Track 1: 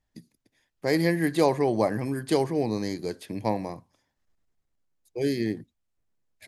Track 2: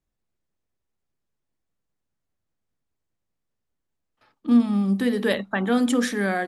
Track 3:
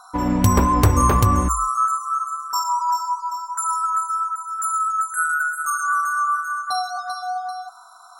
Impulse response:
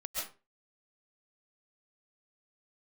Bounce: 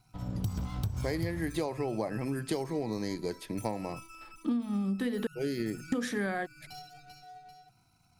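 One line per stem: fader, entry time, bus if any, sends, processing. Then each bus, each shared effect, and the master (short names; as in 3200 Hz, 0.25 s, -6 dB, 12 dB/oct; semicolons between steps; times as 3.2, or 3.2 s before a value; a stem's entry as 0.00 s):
-1.5 dB, 0.20 s, no send, dry
+2.5 dB, 0.00 s, muted 5.27–5.92, no send, dry
-17.0 dB, 0.00 s, no send, minimum comb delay 1.3 ms; ten-band EQ 125 Hz +12 dB, 500 Hz -6 dB, 1000 Hz -6 dB, 2000 Hz -11 dB, 4000 Hz +4 dB, 8000 Hz -5 dB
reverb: off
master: compressor 16:1, threshold -28 dBFS, peak gain reduction 18.5 dB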